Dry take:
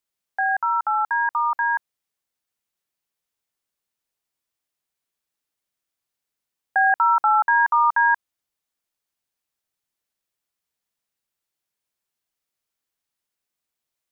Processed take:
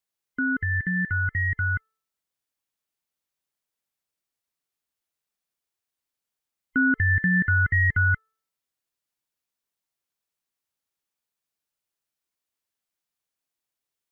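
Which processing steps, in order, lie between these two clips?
every band turned upside down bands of 1 kHz; de-hum 439.9 Hz, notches 4; trim -3 dB

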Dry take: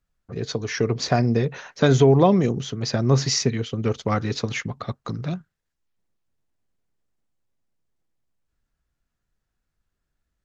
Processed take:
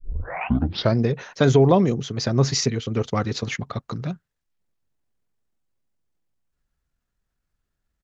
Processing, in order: tape start-up on the opening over 1.27 s; tempo 1.3×

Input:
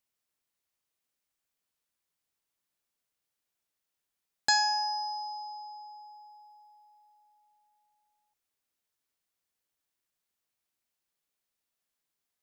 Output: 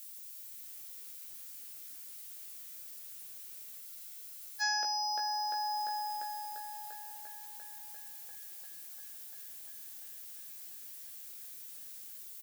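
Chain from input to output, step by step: level rider gain up to 13 dB; added noise violet -60 dBFS; compression 20:1, threshold -32 dBFS, peak gain reduction 23 dB; peaking EQ 1 kHz -7.5 dB 0.6 oct; doubling 16 ms -4 dB; feedback echo behind a band-pass 346 ms, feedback 83%, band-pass 910 Hz, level -18 dB; spectral freeze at 3.84 s, 0.77 s; trim +10.5 dB

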